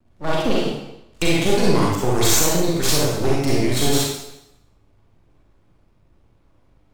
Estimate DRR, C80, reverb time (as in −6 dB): −5.0 dB, 2.5 dB, 0.85 s